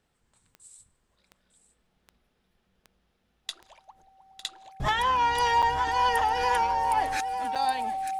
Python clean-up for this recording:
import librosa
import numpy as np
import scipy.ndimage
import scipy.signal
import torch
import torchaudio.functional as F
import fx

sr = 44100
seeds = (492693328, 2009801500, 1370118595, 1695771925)

y = fx.fix_declick_ar(x, sr, threshold=10.0)
y = fx.notch(y, sr, hz=770.0, q=30.0)
y = fx.fix_interpolate(y, sr, at_s=(5.62, 7.55), length_ms=6.9)
y = fx.fix_echo_inverse(y, sr, delay_ms=903, level_db=-13.0)